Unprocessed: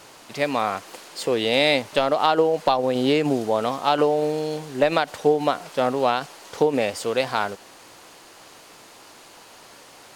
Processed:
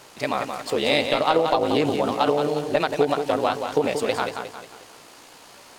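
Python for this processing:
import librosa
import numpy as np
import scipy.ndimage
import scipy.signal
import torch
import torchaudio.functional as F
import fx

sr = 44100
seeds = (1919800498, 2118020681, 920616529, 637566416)

y = fx.echo_feedback(x, sr, ms=314, feedback_pct=43, wet_db=-7)
y = fx.stretch_grains(y, sr, factor=0.57, grain_ms=34.0)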